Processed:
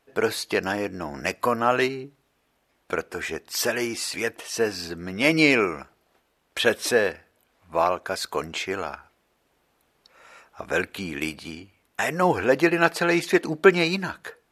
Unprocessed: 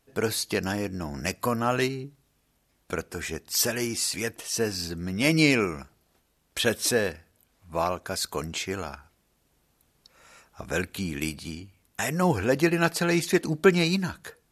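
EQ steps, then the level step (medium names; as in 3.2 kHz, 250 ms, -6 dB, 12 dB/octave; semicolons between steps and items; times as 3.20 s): tone controls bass -12 dB, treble -10 dB; +5.5 dB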